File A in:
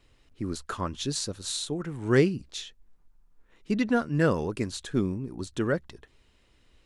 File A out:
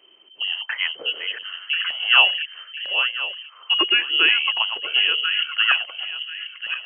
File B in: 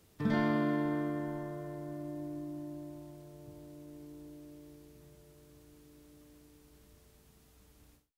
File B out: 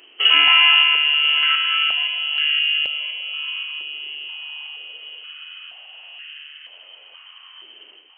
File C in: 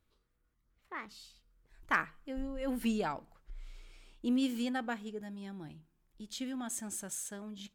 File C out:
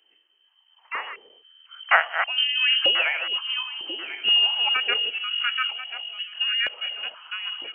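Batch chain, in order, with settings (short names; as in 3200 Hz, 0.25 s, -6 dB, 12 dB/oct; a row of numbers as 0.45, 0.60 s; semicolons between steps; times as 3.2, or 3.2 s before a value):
regenerating reverse delay 0.519 s, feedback 50%, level -7 dB; inverted band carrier 3100 Hz; stepped high-pass 2.1 Hz 360–1700 Hz; normalise peaks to -2 dBFS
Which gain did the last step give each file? +5.0, +15.5, +10.0 dB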